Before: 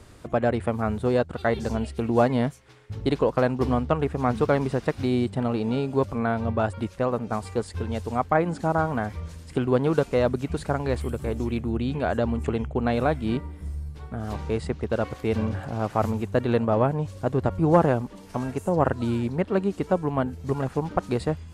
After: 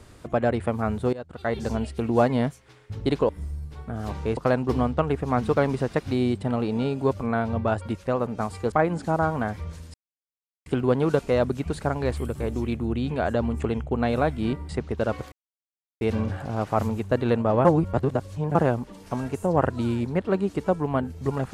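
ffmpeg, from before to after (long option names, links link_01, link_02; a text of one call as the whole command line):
ffmpeg -i in.wav -filter_complex "[0:a]asplit=10[link_01][link_02][link_03][link_04][link_05][link_06][link_07][link_08][link_09][link_10];[link_01]atrim=end=1.13,asetpts=PTS-STARTPTS,afade=type=out:start_time=1.126:duration=0.004:curve=hsin:silence=0.0944061[link_11];[link_02]atrim=start=1.13:end=3.292,asetpts=PTS-STARTPTS,afade=type=in:duration=0.54:silence=0.0944061[link_12];[link_03]atrim=start=13.528:end=14.612[link_13];[link_04]atrim=start=3.288:end=7.642[link_14];[link_05]atrim=start=8.278:end=9.5,asetpts=PTS-STARTPTS,afade=type=out:start_time=1.218:duration=0.004:curve=hsin,apad=pad_dur=0.72[link_15];[link_06]atrim=start=9.5:end=13.532,asetpts=PTS-STARTPTS,afade=type=in:duration=0.004:curve=hsin[link_16];[link_07]atrim=start=14.608:end=15.24,asetpts=PTS-STARTPTS,afade=type=out:start_time=0.628:duration=0.004:curve=hsin,apad=pad_dur=0.69[link_17];[link_08]atrim=start=15.24:end=16.882,asetpts=PTS-STARTPTS,afade=type=in:duration=0.004:curve=hsin[link_18];[link_09]atrim=start=16.878:end=17.782,asetpts=PTS-STARTPTS,areverse[link_19];[link_10]atrim=start=17.778[link_20];[link_11][link_12]concat=n=2:v=0:a=1[link_21];[link_21][link_13]acrossfade=duration=0.004:curve1=hsin:curve2=hsin[link_22];[link_22][link_14]acrossfade=duration=0.004:curve1=hsin:curve2=hsin[link_23];[link_15][link_16]concat=n=2:v=0:a=1[link_24];[link_23][link_24]acrossfade=duration=0.004:curve1=hsin:curve2=hsin[link_25];[link_17][link_18]concat=n=2:v=0:a=1[link_26];[link_25][link_26]acrossfade=duration=0.004:curve1=hsin:curve2=hsin[link_27];[link_27][link_19]acrossfade=duration=0.004:curve1=hsin:curve2=hsin[link_28];[link_28][link_20]acrossfade=duration=0.004:curve1=hsin:curve2=hsin" out.wav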